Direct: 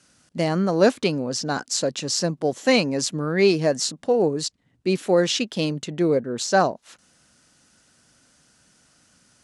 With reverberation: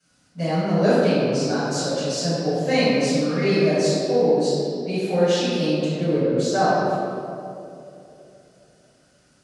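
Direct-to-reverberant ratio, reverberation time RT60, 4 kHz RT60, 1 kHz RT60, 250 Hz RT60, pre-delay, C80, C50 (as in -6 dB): -16.5 dB, 2.8 s, 1.4 s, 2.3 s, 3.0 s, 4 ms, -2.5 dB, -4.5 dB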